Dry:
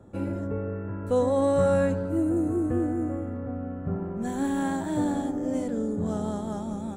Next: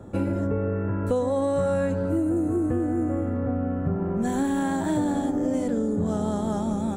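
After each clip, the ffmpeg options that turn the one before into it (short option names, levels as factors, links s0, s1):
-af "acompressor=threshold=0.0316:ratio=6,volume=2.66"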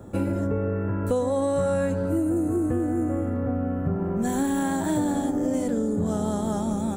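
-af "highshelf=f=9200:g=12"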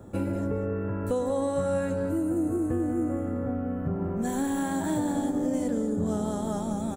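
-af "aecho=1:1:191:0.282,volume=0.668"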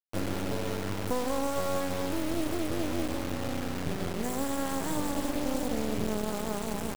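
-af "acrusher=bits=3:dc=4:mix=0:aa=0.000001"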